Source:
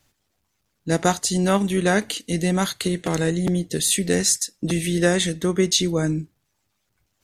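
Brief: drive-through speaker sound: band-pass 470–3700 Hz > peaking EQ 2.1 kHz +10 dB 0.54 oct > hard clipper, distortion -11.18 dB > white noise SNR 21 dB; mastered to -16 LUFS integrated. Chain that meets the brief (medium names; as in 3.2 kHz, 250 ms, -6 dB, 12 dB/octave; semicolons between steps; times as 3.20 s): band-pass 470–3700 Hz; peaking EQ 2.1 kHz +10 dB 0.54 oct; hard clipper -16.5 dBFS; white noise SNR 21 dB; trim +10 dB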